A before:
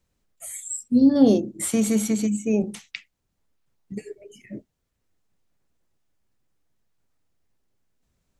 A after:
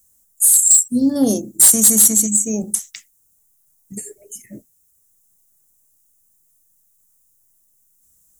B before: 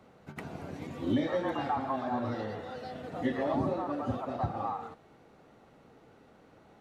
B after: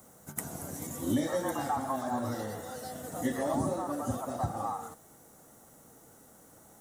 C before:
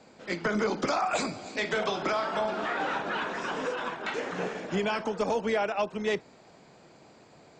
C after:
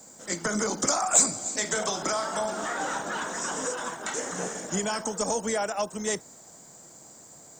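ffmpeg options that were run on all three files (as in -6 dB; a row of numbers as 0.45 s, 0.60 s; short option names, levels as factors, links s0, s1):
-af "aexciter=amount=11.7:drive=8.8:freq=6400,volume=2,asoftclip=hard,volume=0.501,equalizer=f=400:t=o:w=0.33:g=-4,equalizer=f=2500:t=o:w=0.33:g=-9,equalizer=f=4000:t=o:w=0.33:g=5"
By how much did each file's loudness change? +9.5 LU, 0.0 LU, +2.5 LU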